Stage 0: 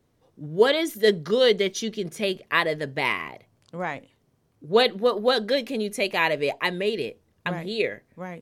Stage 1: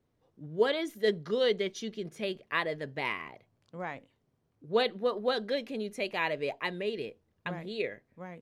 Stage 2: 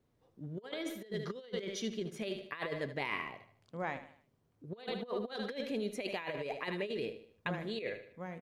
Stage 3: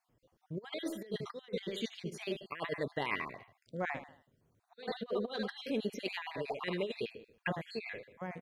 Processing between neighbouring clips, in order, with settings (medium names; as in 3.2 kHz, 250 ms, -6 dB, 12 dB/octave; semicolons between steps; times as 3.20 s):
treble shelf 6.9 kHz -10.5 dB; trim -8 dB
feedback delay 76 ms, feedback 42%, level -12 dB; compressor with a negative ratio -34 dBFS, ratio -0.5; trim -3.5 dB
random holes in the spectrogram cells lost 37%; trim +2.5 dB